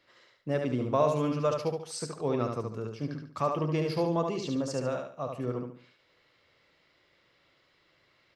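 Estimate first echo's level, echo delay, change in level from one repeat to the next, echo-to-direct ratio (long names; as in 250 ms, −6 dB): −4.5 dB, 72 ms, −9.5 dB, −4.0 dB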